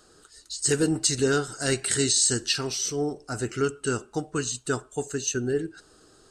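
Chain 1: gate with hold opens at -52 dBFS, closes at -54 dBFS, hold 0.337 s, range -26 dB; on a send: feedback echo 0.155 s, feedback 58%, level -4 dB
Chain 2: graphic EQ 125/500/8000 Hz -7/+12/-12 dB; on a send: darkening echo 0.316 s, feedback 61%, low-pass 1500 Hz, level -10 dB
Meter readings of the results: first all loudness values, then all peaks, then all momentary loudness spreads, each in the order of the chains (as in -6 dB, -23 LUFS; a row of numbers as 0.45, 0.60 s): -24.0, -22.0 LUFS; -8.0, -5.5 dBFS; 10, 8 LU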